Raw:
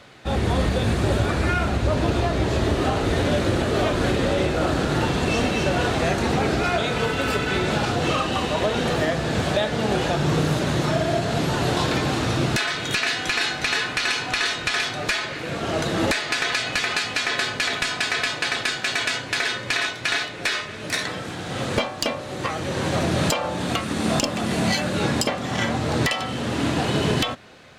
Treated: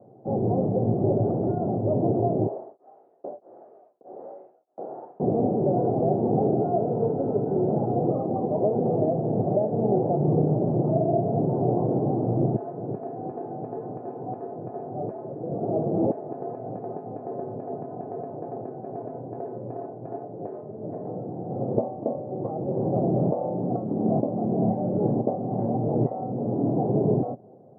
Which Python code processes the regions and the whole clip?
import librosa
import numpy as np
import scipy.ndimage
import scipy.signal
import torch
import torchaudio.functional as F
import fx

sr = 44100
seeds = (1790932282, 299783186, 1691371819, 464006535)

y = fx.chain(x, sr, fx.filter_lfo_highpass(shape='saw_up', hz=1.3, low_hz=610.0, high_hz=5400.0, q=0.83),
    fx.tremolo_abs(hz=1.6), at=(2.47, 5.2))
y = scipy.signal.sosfilt(scipy.signal.cheby1(4, 1.0, [110.0, 760.0], 'bandpass', fs=sr, output='sos'), y)
y = fx.peak_eq(y, sr, hz=390.0, db=4.0, octaves=0.29)